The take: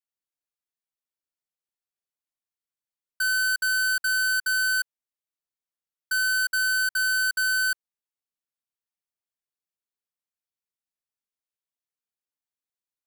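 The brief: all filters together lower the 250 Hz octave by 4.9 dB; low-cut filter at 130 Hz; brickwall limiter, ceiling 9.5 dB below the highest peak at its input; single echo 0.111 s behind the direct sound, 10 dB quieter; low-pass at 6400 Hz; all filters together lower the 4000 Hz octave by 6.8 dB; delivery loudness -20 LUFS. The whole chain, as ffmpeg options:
-af "highpass=130,lowpass=6.4k,equalizer=f=250:t=o:g=-6,equalizer=f=4k:t=o:g=-7,alimiter=level_in=8dB:limit=-24dB:level=0:latency=1,volume=-8dB,aecho=1:1:111:0.316,volume=14.5dB"

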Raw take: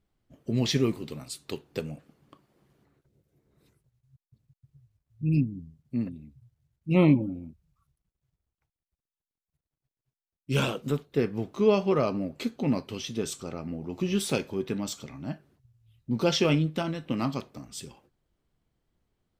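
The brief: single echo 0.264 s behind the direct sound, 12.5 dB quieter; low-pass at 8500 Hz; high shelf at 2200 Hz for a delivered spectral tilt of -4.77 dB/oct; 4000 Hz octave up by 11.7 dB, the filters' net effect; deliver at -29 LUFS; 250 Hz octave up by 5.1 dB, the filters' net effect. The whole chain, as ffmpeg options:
-af "lowpass=8.5k,equalizer=f=250:t=o:g=6.5,highshelf=f=2.2k:g=7,equalizer=f=4k:t=o:g=8.5,aecho=1:1:264:0.237,volume=-5.5dB"

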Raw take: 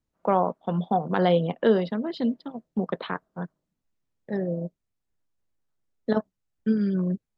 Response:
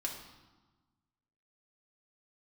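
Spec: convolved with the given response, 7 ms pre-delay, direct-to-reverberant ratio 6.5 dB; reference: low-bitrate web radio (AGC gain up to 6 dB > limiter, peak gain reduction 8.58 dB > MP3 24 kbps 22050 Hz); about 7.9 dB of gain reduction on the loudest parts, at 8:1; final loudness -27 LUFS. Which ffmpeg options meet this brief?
-filter_complex "[0:a]acompressor=threshold=-23dB:ratio=8,asplit=2[a][b];[1:a]atrim=start_sample=2205,adelay=7[c];[b][c]afir=irnorm=-1:irlink=0,volume=-7.5dB[d];[a][d]amix=inputs=2:normalize=0,dynaudnorm=m=6dB,alimiter=limit=-21dB:level=0:latency=1,volume=6dB" -ar 22050 -c:a libmp3lame -b:a 24k

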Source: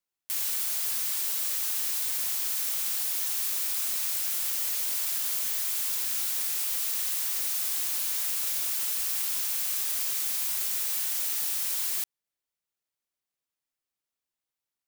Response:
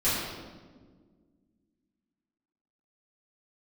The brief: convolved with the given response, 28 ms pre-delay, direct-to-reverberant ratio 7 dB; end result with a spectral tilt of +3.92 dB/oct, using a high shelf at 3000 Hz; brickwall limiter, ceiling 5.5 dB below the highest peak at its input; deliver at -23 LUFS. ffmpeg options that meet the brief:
-filter_complex "[0:a]highshelf=f=3k:g=7,alimiter=limit=-15dB:level=0:latency=1,asplit=2[a][b];[1:a]atrim=start_sample=2205,adelay=28[c];[b][c]afir=irnorm=-1:irlink=0,volume=-19.5dB[d];[a][d]amix=inputs=2:normalize=0,volume=-1.5dB"

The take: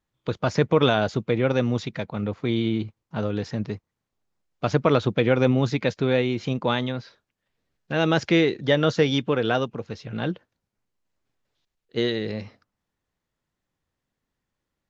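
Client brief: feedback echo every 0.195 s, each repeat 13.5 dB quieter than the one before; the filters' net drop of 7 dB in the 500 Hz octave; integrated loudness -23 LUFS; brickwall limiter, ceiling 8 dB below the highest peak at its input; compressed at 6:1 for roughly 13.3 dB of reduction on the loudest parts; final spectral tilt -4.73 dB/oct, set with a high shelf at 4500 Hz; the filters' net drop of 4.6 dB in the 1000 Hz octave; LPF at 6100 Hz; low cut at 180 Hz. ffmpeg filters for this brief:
-af "highpass=180,lowpass=6.1k,equalizer=f=500:t=o:g=-7.5,equalizer=f=1k:t=o:g=-3.5,highshelf=f=4.5k:g=-5,acompressor=threshold=-34dB:ratio=6,alimiter=level_in=3.5dB:limit=-24dB:level=0:latency=1,volume=-3.5dB,aecho=1:1:195|390:0.211|0.0444,volume=17dB"

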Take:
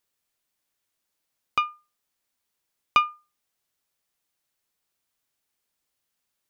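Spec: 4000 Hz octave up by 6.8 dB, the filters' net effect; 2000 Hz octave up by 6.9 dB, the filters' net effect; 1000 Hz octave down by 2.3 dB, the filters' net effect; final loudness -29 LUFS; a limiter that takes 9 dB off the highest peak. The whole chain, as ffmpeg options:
-af "equalizer=f=1k:t=o:g=-6.5,equalizer=f=2k:t=o:g=7,equalizer=f=4k:t=o:g=7,volume=0.5dB,alimiter=limit=-11dB:level=0:latency=1"

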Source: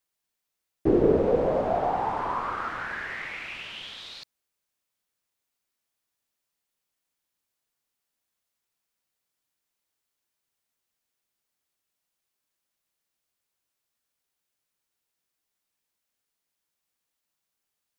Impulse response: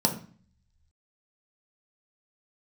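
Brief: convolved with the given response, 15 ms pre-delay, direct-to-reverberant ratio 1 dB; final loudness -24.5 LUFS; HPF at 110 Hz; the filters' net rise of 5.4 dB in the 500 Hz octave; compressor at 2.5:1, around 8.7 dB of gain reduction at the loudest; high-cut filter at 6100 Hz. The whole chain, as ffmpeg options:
-filter_complex "[0:a]highpass=110,lowpass=6.1k,equalizer=f=500:t=o:g=6.5,acompressor=threshold=-25dB:ratio=2.5,asplit=2[a][b];[1:a]atrim=start_sample=2205,adelay=15[c];[b][c]afir=irnorm=-1:irlink=0,volume=-12dB[d];[a][d]amix=inputs=2:normalize=0,volume=-0.5dB"

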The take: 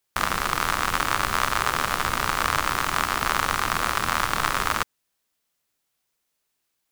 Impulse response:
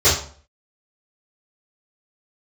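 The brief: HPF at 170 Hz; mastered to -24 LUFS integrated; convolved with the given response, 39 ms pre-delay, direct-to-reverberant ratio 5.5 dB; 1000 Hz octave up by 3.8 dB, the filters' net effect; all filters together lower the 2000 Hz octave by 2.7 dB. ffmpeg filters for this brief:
-filter_complex "[0:a]highpass=170,equalizer=f=1k:t=o:g=7,equalizer=f=2k:t=o:g=-7,asplit=2[a][b];[1:a]atrim=start_sample=2205,adelay=39[c];[b][c]afir=irnorm=-1:irlink=0,volume=-27.5dB[d];[a][d]amix=inputs=2:normalize=0,volume=-2.5dB"

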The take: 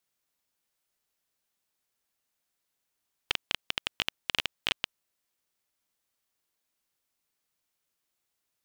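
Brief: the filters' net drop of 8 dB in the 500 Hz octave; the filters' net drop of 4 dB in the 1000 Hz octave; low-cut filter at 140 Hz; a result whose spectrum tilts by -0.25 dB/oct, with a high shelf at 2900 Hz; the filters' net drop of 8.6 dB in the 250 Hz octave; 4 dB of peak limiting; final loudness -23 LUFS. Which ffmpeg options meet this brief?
-af "highpass=140,equalizer=f=250:t=o:g=-8.5,equalizer=f=500:t=o:g=-7,equalizer=f=1k:t=o:g=-4,highshelf=f=2.9k:g=5,volume=11.5dB,alimiter=limit=0dB:level=0:latency=1"

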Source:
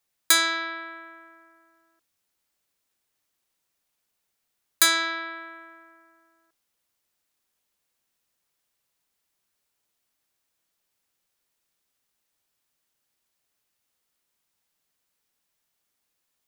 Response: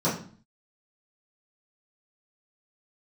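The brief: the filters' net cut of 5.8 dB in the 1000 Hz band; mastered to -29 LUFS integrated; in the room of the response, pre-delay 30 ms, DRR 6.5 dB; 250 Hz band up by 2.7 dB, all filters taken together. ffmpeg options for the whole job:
-filter_complex "[0:a]equalizer=f=250:t=o:g=5.5,equalizer=f=1k:t=o:g=-9,asplit=2[a][b];[1:a]atrim=start_sample=2205,adelay=30[c];[b][c]afir=irnorm=-1:irlink=0,volume=-19.5dB[d];[a][d]amix=inputs=2:normalize=0,volume=-7dB"

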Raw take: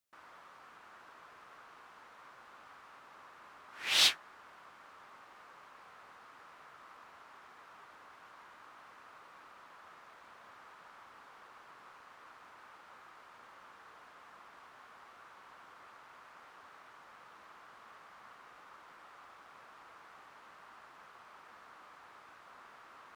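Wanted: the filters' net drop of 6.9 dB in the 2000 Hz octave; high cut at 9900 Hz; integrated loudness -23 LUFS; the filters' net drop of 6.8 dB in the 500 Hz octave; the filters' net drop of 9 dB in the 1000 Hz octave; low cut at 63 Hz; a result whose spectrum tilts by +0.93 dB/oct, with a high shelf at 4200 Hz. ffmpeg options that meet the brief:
-af "highpass=63,lowpass=9.9k,equalizer=f=500:t=o:g=-5.5,equalizer=f=1k:t=o:g=-8,equalizer=f=2k:t=o:g=-5.5,highshelf=f=4.2k:g=-5.5,volume=10dB"

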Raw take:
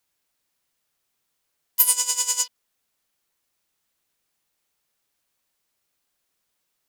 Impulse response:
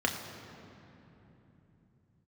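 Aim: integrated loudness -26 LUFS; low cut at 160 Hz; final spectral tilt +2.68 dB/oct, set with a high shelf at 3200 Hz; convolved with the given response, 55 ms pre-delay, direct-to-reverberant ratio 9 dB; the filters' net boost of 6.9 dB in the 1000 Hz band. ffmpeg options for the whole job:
-filter_complex "[0:a]highpass=160,equalizer=f=1k:t=o:g=6.5,highshelf=f=3.2k:g=5.5,asplit=2[a][b];[1:a]atrim=start_sample=2205,adelay=55[c];[b][c]afir=irnorm=-1:irlink=0,volume=-18.5dB[d];[a][d]amix=inputs=2:normalize=0,volume=-10.5dB"

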